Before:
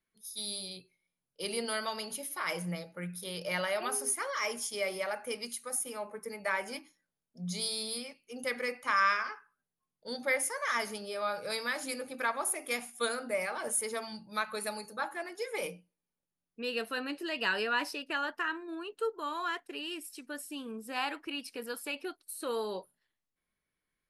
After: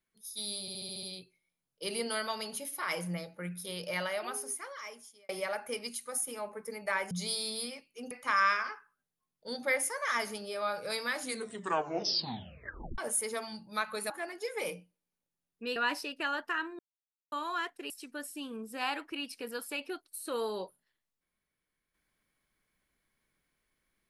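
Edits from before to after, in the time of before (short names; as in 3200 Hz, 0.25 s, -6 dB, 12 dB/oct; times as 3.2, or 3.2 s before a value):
0.61 stutter 0.07 s, 7 plays
3.32–4.87 fade out
6.69–7.44 cut
8.44–8.71 cut
11.81 tape stop 1.77 s
14.7–15.07 cut
16.73–17.66 cut
18.69–19.22 mute
19.8–20.05 cut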